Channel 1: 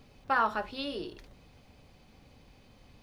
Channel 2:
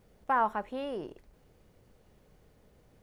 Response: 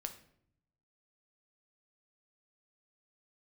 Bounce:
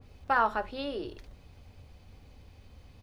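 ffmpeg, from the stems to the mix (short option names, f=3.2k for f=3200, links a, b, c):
-filter_complex "[0:a]volume=-1dB[a];[1:a]lowshelf=f=130:t=q:w=3:g=14,adelay=3.3,volume=-6dB[b];[a][b]amix=inputs=2:normalize=0,adynamicequalizer=threshold=0.00631:dfrequency=2000:dqfactor=0.7:tfrequency=2000:tqfactor=0.7:attack=5:release=100:ratio=0.375:range=3:mode=cutabove:tftype=highshelf"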